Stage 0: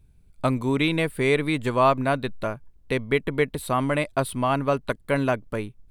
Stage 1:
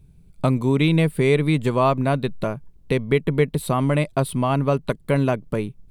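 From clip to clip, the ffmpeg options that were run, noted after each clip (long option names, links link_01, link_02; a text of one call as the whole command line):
ffmpeg -i in.wav -filter_complex "[0:a]asplit=2[link_01][link_02];[link_02]acompressor=threshold=-28dB:ratio=6,volume=-0.5dB[link_03];[link_01][link_03]amix=inputs=2:normalize=0,equalizer=frequency=160:width_type=o:width=0.67:gain=10,equalizer=frequency=400:width_type=o:width=0.67:gain=3,equalizer=frequency=1600:width_type=o:width=0.67:gain=-4,volume=-2dB" out.wav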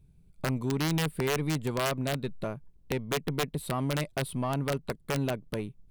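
ffmpeg -i in.wav -af "aeval=exprs='(mod(2.82*val(0)+1,2)-1)/2.82':channel_layout=same,aeval=exprs='(tanh(5.01*val(0)+0.25)-tanh(0.25))/5.01':channel_layout=same,volume=-8dB" out.wav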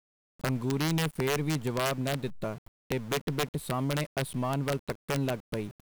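ffmpeg -i in.wav -af "aeval=exprs='val(0)*gte(abs(val(0)),0.00562)':channel_layout=same" out.wav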